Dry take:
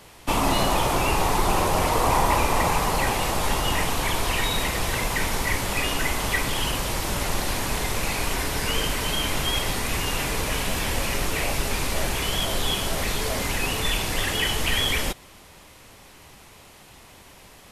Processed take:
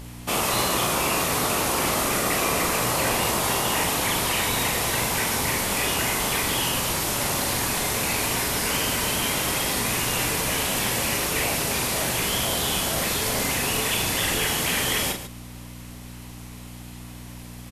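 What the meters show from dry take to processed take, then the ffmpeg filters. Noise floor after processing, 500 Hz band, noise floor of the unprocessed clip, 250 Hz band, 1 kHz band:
-40 dBFS, 0.0 dB, -49 dBFS, +0.5 dB, -1.5 dB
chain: -af "highshelf=f=7k:g=7,afftfilt=real='re*lt(hypot(re,im),0.282)':imag='im*lt(hypot(re,im),0.282)':win_size=1024:overlap=0.75,aeval=exprs='val(0)+0.0141*(sin(2*PI*60*n/s)+sin(2*PI*2*60*n/s)/2+sin(2*PI*3*60*n/s)/3+sin(2*PI*4*60*n/s)/4+sin(2*PI*5*60*n/s)/5)':c=same,aecho=1:1:40.82|145.8:0.501|0.282"

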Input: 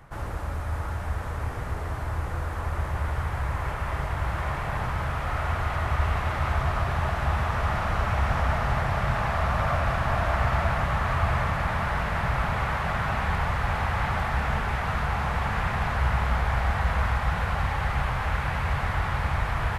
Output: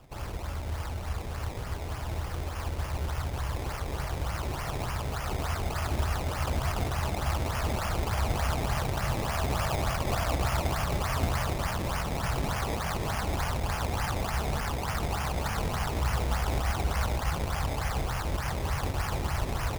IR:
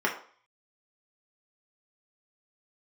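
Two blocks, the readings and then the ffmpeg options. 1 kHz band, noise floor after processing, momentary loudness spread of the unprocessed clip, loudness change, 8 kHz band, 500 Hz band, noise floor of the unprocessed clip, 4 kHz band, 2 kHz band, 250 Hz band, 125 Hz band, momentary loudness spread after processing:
-6.0 dB, -36 dBFS, 6 LU, -4.0 dB, +8.5 dB, -2.0 dB, -32 dBFS, +2.0 dB, -7.0 dB, -1.0 dB, -4.0 dB, 6 LU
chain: -af "acrusher=samples=21:mix=1:aa=0.000001:lfo=1:lforange=21:lforate=3.4,volume=-4dB"

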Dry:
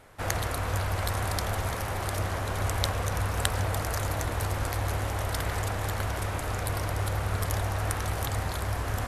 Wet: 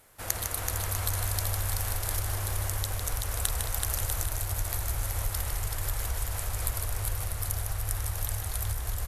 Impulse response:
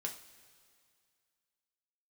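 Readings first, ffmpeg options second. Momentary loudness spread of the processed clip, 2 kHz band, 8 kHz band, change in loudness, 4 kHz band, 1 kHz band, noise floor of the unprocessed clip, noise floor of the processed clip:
3 LU, -6.0 dB, +5.0 dB, -1.0 dB, -2.0 dB, -8.0 dB, -33 dBFS, -35 dBFS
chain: -filter_complex "[0:a]asplit=2[a][b];[b]aecho=0:1:380|646|832.2|962.5|1054:0.631|0.398|0.251|0.158|0.1[c];[a][c]amix=inputs=2:normalize=0,asubboost=boost=11.5:cutoff=58,acompressor=threshold=-19dB:ratio=6,aemphasis=mode=production:type=75fm,asplit=2[d][e];[e]aecho=0:1:154:0.473[f];[d][f]amix=inputs=2:normalize=0,volume=-8dB"

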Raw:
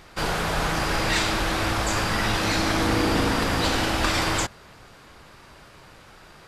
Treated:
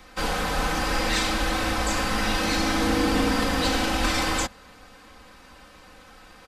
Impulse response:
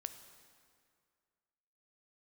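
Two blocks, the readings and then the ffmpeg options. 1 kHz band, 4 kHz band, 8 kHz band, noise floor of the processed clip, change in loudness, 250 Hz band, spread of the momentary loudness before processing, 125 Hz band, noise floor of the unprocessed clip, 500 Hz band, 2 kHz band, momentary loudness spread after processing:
-1.0 dB, -1.0 dB, -0.5 dB, -50 dBFS, -1.0 dB, +0.5 dB, 3 LU, -4.5 dB, -49 dBFS, -1.0 dB, -1.0 dB, 4 LU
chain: -filter_complex "[0:a]aecho=1:1:3.9:0.81,acrossover=split=160|530|4400[a][b][c][d];[c]aeval=exprs='clip(val(0),-1,0.0631)':c=same[e];[a][b][e][d]amix=inputs=4:normalize=0,volume=-2.5dB"

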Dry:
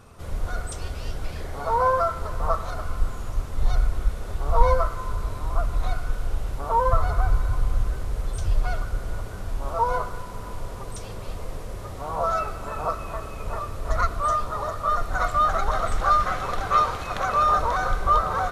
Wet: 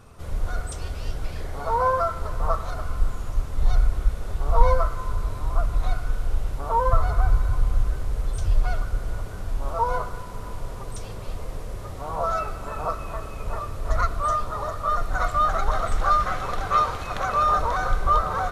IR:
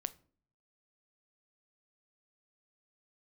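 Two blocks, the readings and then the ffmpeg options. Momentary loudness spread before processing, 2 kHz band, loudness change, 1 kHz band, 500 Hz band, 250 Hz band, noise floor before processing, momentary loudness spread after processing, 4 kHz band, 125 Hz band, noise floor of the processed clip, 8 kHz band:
14 LU, -1.0 dB, 0.0 dB, -1.0 dB, -1.0 dB, -0.5 dB, -35 dBFS, 13 LU, -1.0 dB, +1.0 dB, -35 dBFS, -1.0 dB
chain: -filter_complex "[0:a]asplit=2[a][b];[1:a]atrim=start_sample=2205,lowshelf=f=140:g=8.5[c];[b][c]afir=irnorm=-1:irlink=0,volume=-8dB[d];[a][d]amix=inputs=2:normalize=0,volume=-3.5dB"

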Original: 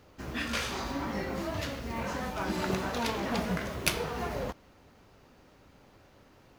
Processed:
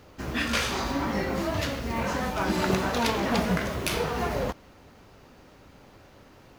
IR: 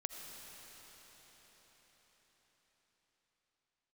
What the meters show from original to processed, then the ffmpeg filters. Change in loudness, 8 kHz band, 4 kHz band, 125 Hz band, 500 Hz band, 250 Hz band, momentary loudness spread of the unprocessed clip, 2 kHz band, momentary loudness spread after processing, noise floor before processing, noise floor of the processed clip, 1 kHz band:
+5.5 dB, +3.5 dB, +5.0 dB, +6.0 dB, +6.0 dB, +6.0 dB, 5 LU, +5.5 dB, 5 LU, -59 dBFS, -53 dBFS, +6.0 dB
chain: -af "alimiter=level_in=14.5dB:limit=-1dB:release=50:level=0:latency=1,volume=-8.5dB"

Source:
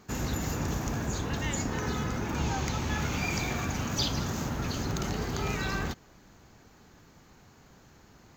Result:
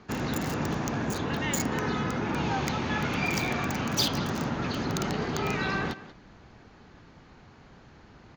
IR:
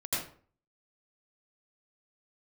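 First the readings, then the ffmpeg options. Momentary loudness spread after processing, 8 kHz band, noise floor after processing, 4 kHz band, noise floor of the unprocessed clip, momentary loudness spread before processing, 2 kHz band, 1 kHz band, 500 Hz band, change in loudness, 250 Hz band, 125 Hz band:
4 LU, 0.0 dB, -54 dBFS, +3.0 dB, -57 dBFS, 3 LU, +4.0 dB, +4.0 dB, +4.0 dB, +2.5 dB, +3.5 dB, -0.5 dB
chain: -filter_complex "[0:a]acrossover=split=120|5000[a][b][c];[a]acompressor=threshold=-50dB:ratio=6[d];[b]aecho=1:1:185:0.168[e];[c]acrusher=bits=5:mix=0:aa=0.000001[f];[d][e][f]amix=inputs=3:normalize=0,volume=4dB"

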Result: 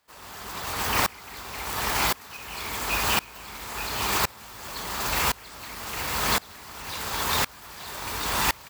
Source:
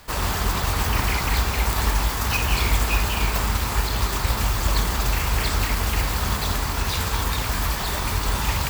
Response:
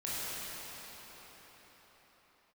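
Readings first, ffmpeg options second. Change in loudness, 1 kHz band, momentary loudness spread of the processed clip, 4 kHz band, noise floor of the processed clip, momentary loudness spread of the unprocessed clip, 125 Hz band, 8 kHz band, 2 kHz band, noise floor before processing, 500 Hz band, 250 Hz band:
-4.0 dB, -2.5 dB, 14 LU, -2.5 dB, -47 dBFS, 3 LU, -15.5 dB, -2.5 dB, -2.5 dB, -26 dBFS, -4.0 dB, -7.5 dB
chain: -filter_complex "[0:a]highpass=f=350:p=1,asplit=2[a][b];[b]aecho=0:1:878:0.596[c];[a][c]amix=inputs=2:normalize=0,aeval=exprs='val(0)*pow(10,-27*if(lt(mod(-0.94*n/s,1),2*abs(-0.94)/1000),1-mod(-0.94*n/s,1)/(2*abs(-0.94)/1000),(mod(-0.94*n/s,1)-2*abs(-0.94)/1000)/(1-2*abs(-0.94)/1000))/20)':c=same,volume=4.5dB"

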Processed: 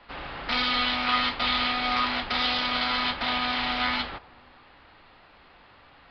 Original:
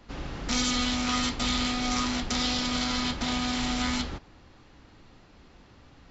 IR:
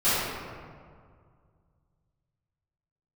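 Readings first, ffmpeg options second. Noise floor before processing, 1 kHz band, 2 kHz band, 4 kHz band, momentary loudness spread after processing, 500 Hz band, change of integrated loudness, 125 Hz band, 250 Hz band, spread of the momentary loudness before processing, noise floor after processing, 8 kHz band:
-55 dBFS, +6.0 dB, +6.5 dB, +3.0 dB, 6 LU, +1.5 dB, +2.5 dB, -8.0 dB, -6.0 dB, 6 LU, -55 dBFS, n/a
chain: -filter_complex "[0:a]acrossover=split=580 4100:gain=0.178 1 0.141[a][b][c];[a][b][c]amix=inputs=3:normalize=0,asplit=2[d][e];[1:a]atrim=start_sample=2205,lowpass=1.1k[f];[e][f]afir=irnorm=-1:irlink=0,volume=-35dB[g];[d][g]amix=inputs=2:normalize=0,aresample=11025,aresample=44100,volume=7dB"

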